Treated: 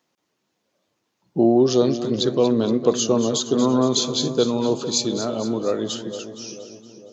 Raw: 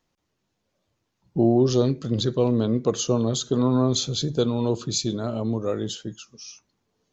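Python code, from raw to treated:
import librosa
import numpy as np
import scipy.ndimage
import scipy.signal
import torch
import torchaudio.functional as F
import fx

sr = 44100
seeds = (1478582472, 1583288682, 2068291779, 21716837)

p1 = scipy.signal.sosfilt(scipy.signal.butter(2, 210.0, 'highpass', fs=sr, output='sos'), x)
p2 = p1 + fx.echo_split(p1, sr, split_hz=730.0, low_ms=454, high_ms=233, feedback_pct=52, wet_db=-11.0, dry=0)
y = F.gain(torch.from_numpy(p2), 4.0).numpy()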